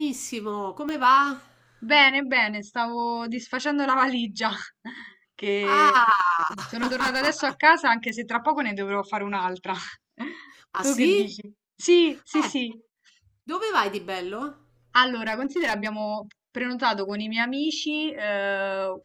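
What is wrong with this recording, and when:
0:00.89: click −19 dBFS
0:06.82–0:07.28: clipping −19.5 dBFS
0:08.09: click −18 dBFS
0:15.27–0:15.89: clipping −20.5 dBFS

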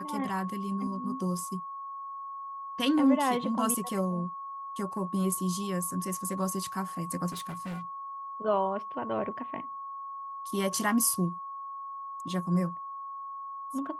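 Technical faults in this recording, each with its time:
whistle 1,100 Hz −37 dBFS
0:07.29–0:07.83: clipping −34 dBFS

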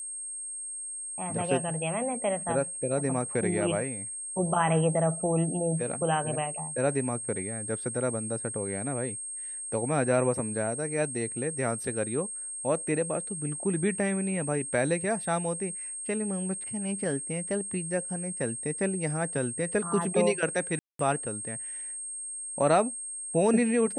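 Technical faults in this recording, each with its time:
whistle 8,500 Hz −35 dBFS
0:20.79–0:20.99: drop-out 203 ms

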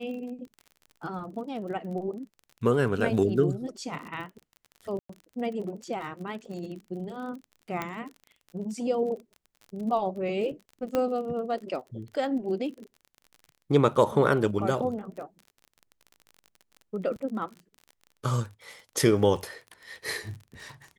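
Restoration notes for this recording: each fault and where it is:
surface crackle 37 per second −38 dBFS
0:04.99–0:05.09: drop-out 104 ms
0:07.82: click −17 dBFS
0:10.95: click −14 dBFS

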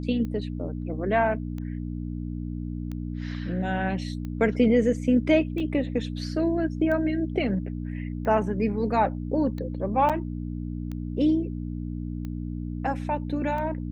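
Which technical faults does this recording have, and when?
mains hum 60 Hz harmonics 5 −32 dBFS
scratch tick 45 rpm −24 dBFS
0:05.60: drop-out 3.1 ms
0:10.09–0:10.10: drop-out 6.7 ms

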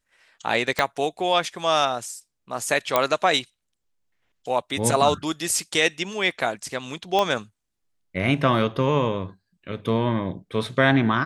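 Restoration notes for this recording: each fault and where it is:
0:00.79: click −6 dBFS
0:02.96: click −4 dBFS
0:07.19: click −9 dBFS

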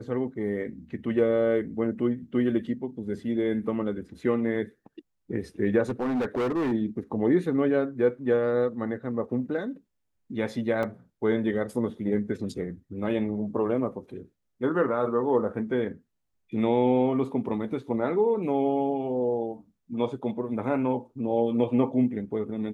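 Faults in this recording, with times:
0:05.89–0:06.73: clipping −23.5 dBFS
0:10.83: drop-out 2.3 ms

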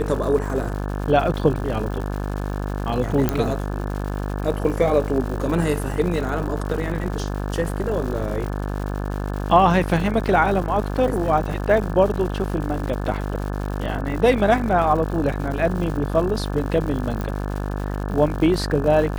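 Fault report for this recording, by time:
mains buzz 50 Hz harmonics 35 −26 dBFS
surface crackle 210 per second −30 dBFS
0:03.29: click −6 dBFS
0:17.21: click −15 dBFS

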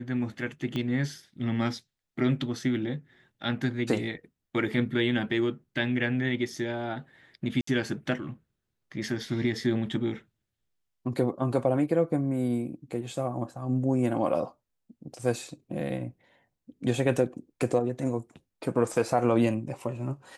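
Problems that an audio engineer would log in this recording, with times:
0:00.76: click −20 dBFS
0:07.61–0:07.67: drop-out 64 ms

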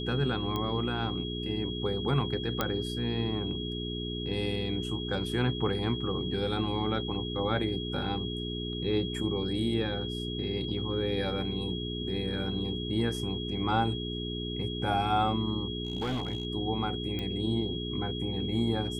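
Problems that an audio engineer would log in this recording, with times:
mains hum 60 Hz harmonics 7 −36 dBFS
whistle 3,300 Hz −38 dBFS
0:00.56: click −19 dBFS
0:02.61: click −12 dBFS
0:15.85–0:16.45: clipping −27.5 dBFS
0:17.19: click −22 dBFS

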